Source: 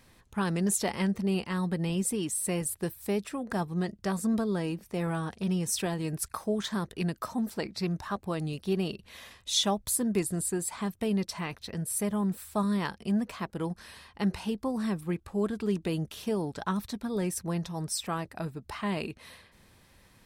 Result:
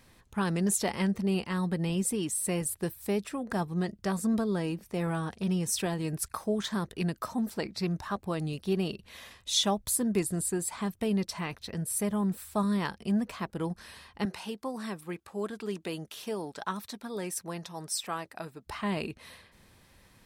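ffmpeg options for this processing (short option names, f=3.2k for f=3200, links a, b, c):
-filter_complex "[0:a]asettb=1/sr,asplit=3[a][b][c];[a]atrim=end=14.254[d];[b]atrim=start=14.25:end=18.67,asetpts=PTS-STARTPTS,afade=t=in:d=0.004:c=qsin,afade=t=out:st=4.416:d=0.004:c=qsin,highpass=f=490:p=1[e];[c]atrim=start=18.666[f];[d][e]acrossfade=d=0.004:c1=hsin:c2=qsin[g];[g][f]acrossfade=d=0.004:c1=qsin:c2=hsin"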